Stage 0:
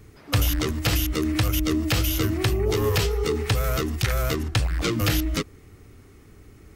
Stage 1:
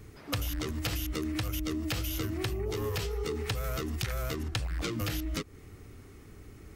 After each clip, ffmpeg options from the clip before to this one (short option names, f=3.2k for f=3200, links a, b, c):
-af "acompressor=threshold=-29dB:ratio=6,volume=-1dB"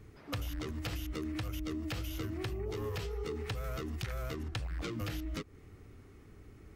-af "highshelf=f=4.5k:g=-8,volume=-4.5dB"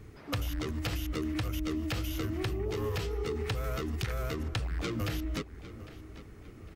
-filter_complex "[0:a]asplit=2[a][b];[b]adelay=804,lowpass=f=4.5k:p=1,volume=-15dB,asplit=2[c][d];[d]adelay=804,lowpass=f=4.5k:p=1,volume=0.43,asplit=2[e][f];[f]adelay=804,lowpass=f=4.5k:p=1,volume=0.43,asplit=2[g][h];[h]adelay=804,lowpass=f=4.5k:p=1,volume=0.43[i];[a][c][e][g][i]amix=inputs=5:normalize=0,volume=4.5dB"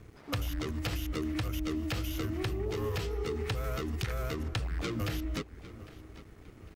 -af "aeval=exprs='sgn(val(0))*max(abs(val(0))-0.00133,0)':c=same"